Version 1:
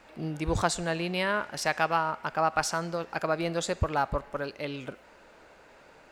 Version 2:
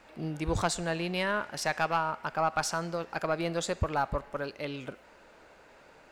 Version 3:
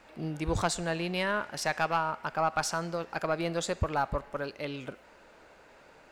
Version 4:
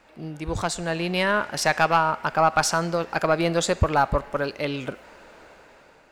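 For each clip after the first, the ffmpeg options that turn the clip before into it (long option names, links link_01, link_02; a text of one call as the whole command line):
ffmpeg -i in.wav -af "aeval=exprs='(tanh(4.47*val(0)+0.2)-tanh(0.2))/4.47':channel_layout=same,volume=-1dB" out.wav
ffmpeg -i in.wav -af anull out.wav
ffmpeg -i in.wav -af "dynaudnorm=framelen=390:gausssize=5:maxgain=9dB" out.wav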